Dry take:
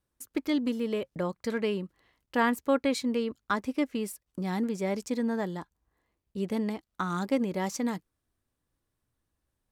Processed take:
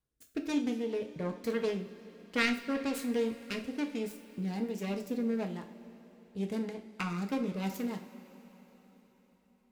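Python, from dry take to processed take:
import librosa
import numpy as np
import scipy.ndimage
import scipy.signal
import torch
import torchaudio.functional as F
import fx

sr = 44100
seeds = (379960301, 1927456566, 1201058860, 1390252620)

y = fx.self_delay(x, sr, depth_ms=0.42)
y = fx.rotary_switch(y, sr, hz=1.2, then_hz=6.7, switch_at_s=6.69)
y = fx.rev_double_slope(y, sr, seeds[0], early_s=0.39, late_s=4.5, knee_db=-18, drr_db=3.5)
y = y * 10.0 ** (-4.0 / 20.0)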